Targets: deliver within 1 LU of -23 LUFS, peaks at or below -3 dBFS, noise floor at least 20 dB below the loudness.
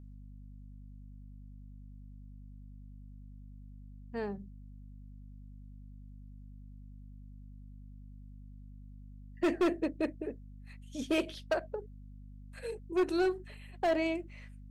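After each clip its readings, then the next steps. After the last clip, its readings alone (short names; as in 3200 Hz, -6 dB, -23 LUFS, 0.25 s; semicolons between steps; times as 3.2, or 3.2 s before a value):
clipped 0.8%; flat tops at -23.5 dBFS; hum 50 Hz; harmonics up to 250 Hz; hum level -47 dBFS; loudness -34.5 LUFS; peak -23.5 dBFS; loudness target -23.0 LUFS
-> clip repair -23.5 dBFS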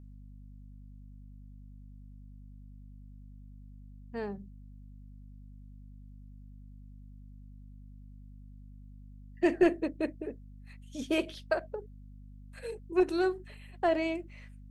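clipped 0.0%; hum 50 Hz; harmonics up to 250 Hz; hum level -47 dBFS
-> de-hum 50 Hz, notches 5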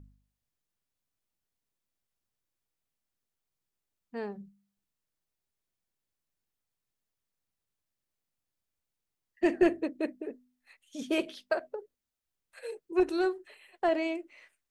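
hum none; loudness -31.0 LUFS; peak -14.5 dBFS; loudness target -23.0 LUFS
-> gain +8 dB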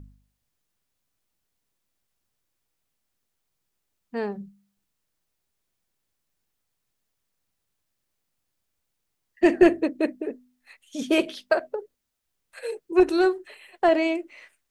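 loudness -23.5 LUFS; peak -6.5 dBFS; noise floor -79 dBFS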